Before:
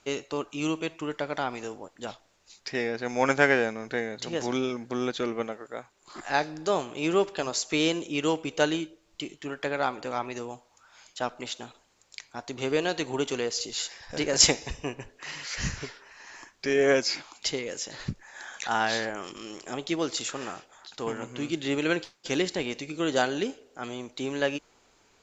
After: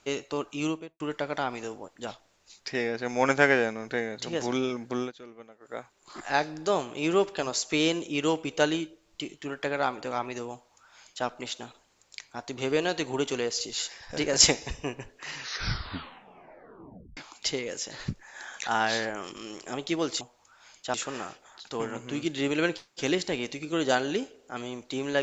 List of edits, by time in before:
0:00.61–0:01.00: fade out and dull
0:04.99–0:05.73: duck −17 dB, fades 0.13 s
0:10.53–0:11.26: duplicate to 0:20.21
0:15.30: tape stop 1.87 s

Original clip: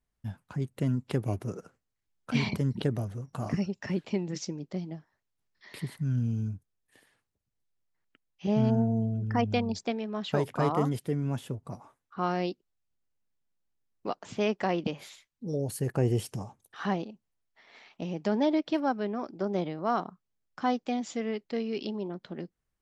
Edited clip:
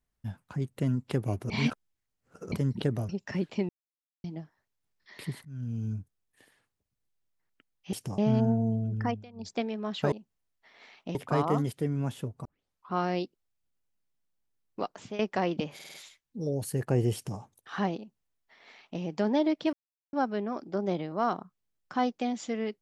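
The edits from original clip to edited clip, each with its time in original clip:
0:01.50–0:02.52: reverse
0:03.09–0:03.64: remove
0:04.24–0:04.79: silence
0:06.00–0:06.51: fade in, from −20.5 dB
0:09.30–0:09.88: duck −23.5 dB, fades 0.25 s
0:11.72: tape start 0.47 s
0:14.21–0:14.46: fade out, to −14.5 dB
0:15.01: stutter 0.05 s, 5 plays
0:16.21–0:16.46: duplicate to 0:08.48
0:17.05–0:18.08: duplicate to 0:10.42
0:18.80: splice in silence 0.40 s

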